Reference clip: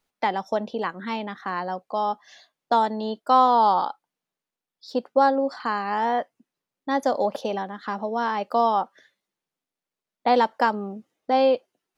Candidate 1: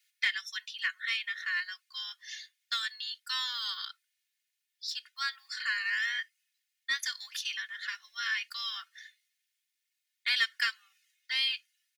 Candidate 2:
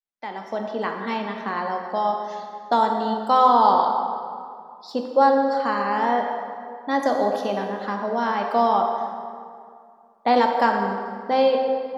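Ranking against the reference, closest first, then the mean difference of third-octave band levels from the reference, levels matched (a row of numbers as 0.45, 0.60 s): 2, 1; 5.0, 16.5 dB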